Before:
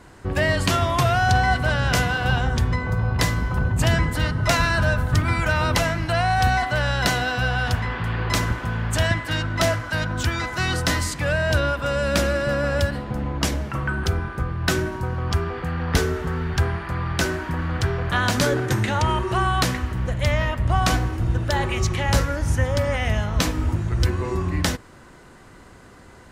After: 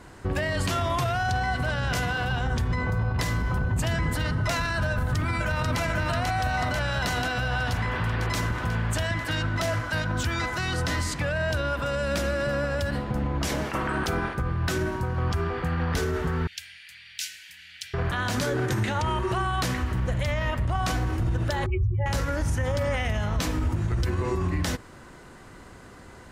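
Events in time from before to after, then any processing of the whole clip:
4.91–5.81 s: echo throw 490 ms, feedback 65%, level -2 dB
10.75–11.49 s: treble shelf 8.1 kHz -7 dB
13.47–14.33 s: spectral peaks clipped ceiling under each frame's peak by 16 dB
16.47–17.94 s: inverse Chebyshev high-pass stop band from 1.2 kHz
21.66–22.06 s: spectral contrast enhancement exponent 3.1
whole clip: peak limiter -18 dBFS

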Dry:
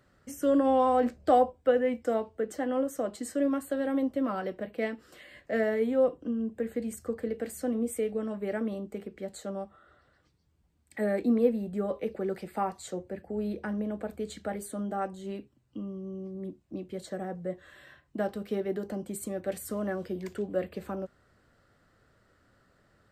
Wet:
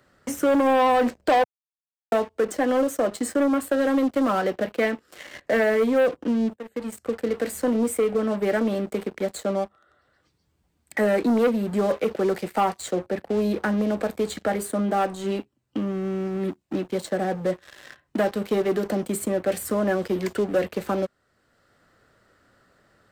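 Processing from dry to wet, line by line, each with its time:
1.44–2.12 s: mute
6.56–7.65 s: fade in, from -19.5 dB
whole clip: waveshaping leveller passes 3; bass shelf 180 Hz -7.5 dB; three bands compressed up and down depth 40%

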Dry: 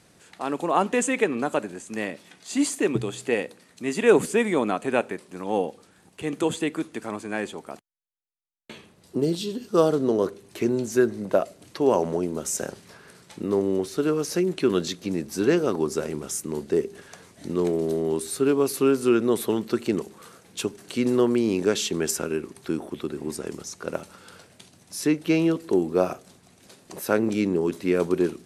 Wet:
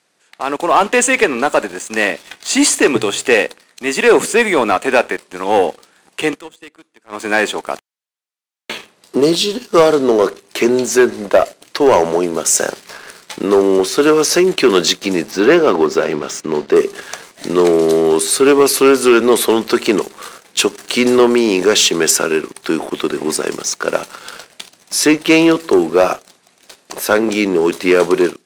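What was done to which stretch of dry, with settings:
6.25–7.26 s: dip -22.5 dB, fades 0.17 s
15.31–16.76 s: distance through air 150 m
whole clip: frequency weighting A; level rider gain up to 11 dB; waveshaping leveller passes 2

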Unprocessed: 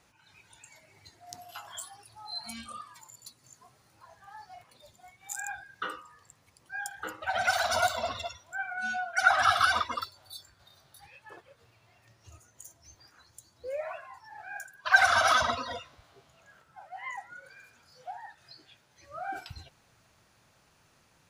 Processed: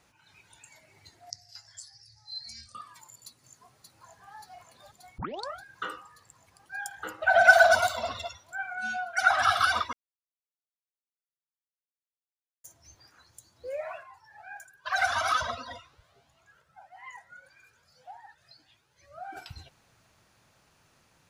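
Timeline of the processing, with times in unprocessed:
1.30–2.75 s: FFT filter 130 Hz 0 dB, 200 Hz -18 dB, 360 Hz -24 dB, 590 Hz -17 dB, 1.2 kHz -25 dB, 1.9 kHz -3 dB, 3.1 kHz -21 dB, 4.9 kHz +12 dB, 7.3 kHz -3 dB, 14 kHz -24 dB
3.25–4.33 s: echo throw 580 ms, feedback 80%, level -6 dB
5.18 s: tape start 0.42 s
7.19–7.75 s: small resonant body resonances 670/1500 Hz, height 16 dB
9.93–12.64 s: mute
14.03–19.37 s: Shepard-style flanger rising 1.7 Hz

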